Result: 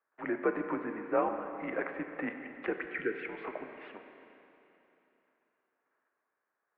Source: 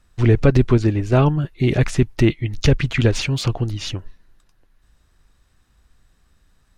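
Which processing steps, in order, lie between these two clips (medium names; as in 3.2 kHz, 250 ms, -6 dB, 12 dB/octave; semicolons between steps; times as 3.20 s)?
gate -54 dBFS, range -7 dB; mistuned SSB -86 Hz 490–2100 Hz; spectral selection erased 2.86–3.26 s, 510–1300 Hz; Schroeder reverb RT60 3.2 s, combs from 30 ms, DRR 6 dB; trim -7.5 dB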